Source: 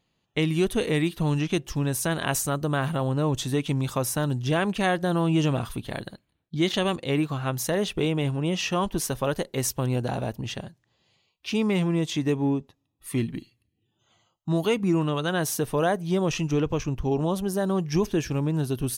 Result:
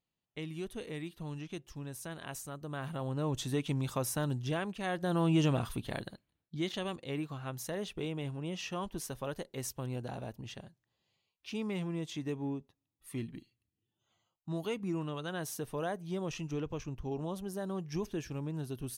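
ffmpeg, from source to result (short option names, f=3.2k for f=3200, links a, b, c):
-af "volume=2.5dB,afade=t=in:st=2.6:d=0.88:silence=0.334965,afade=t=out:st=4.34:d=0.44:silence=0.421697,afade=t=in:st=4.78:d=0.48:silence=0.316228,afade=t=out:st=5.89:d=0.84:silence=0.421697"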